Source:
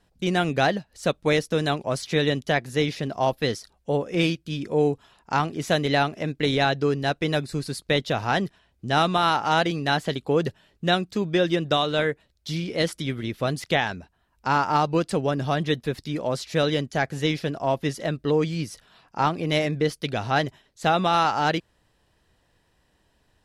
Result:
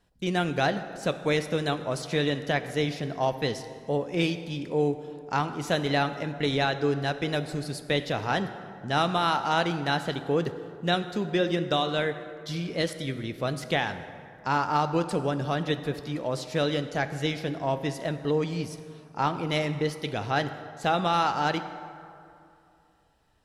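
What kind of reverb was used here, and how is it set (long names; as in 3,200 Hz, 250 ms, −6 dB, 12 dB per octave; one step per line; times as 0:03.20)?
dense smooth reverb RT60 2.6 s, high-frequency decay 0.5×, DRR 9.5 dB
level −4 dB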